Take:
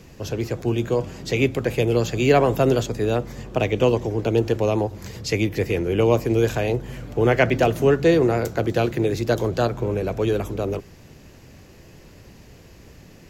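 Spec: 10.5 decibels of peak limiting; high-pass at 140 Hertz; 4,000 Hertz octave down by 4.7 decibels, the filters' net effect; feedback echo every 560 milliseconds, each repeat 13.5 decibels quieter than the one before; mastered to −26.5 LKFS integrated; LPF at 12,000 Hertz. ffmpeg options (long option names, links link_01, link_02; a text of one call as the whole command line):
ffmpeg -i in.wav -af "highpass=140,lowpass=12000,equalizer=frequency=4000:width_type=o:gain=-6.5,alimiter=limit=-15.5dB:level=0:latency=1,aecho=1:1:560|1120:0.211|0.0444,volume=-0.5dB" out.wav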